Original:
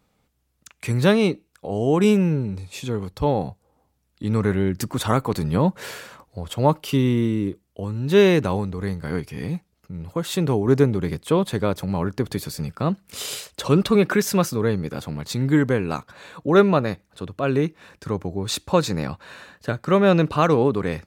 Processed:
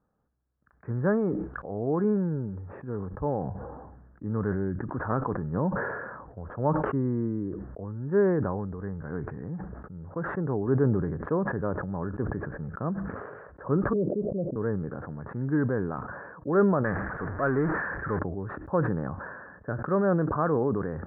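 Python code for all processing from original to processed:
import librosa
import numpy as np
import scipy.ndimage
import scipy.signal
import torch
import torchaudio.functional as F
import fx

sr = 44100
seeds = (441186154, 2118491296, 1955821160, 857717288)

y = fx.chain(x, sr, fx.steep_lowpass(hz=640.0, slope=72),
    fx.low_shelf(hz=310.0, db=-5.5), at=(13.93, 14.56))
y = fx.chain(y, sr, fx.zero_step(step_db=-25.0),
    fx.peak_eq(hz=2200.0, db=13.5, octaves=1.6), at=(16.84, 18.19))
y = scipy.signal.sosfilt(scipy.signal.cheby1(6, 1.0, 1700.0, 'lowpass', fs=sr, output='sos'), y)
y = fx.sustainer(y, sr, db_per_s=35.0)
y = y * librosa.db_to_amplitude(-8.0)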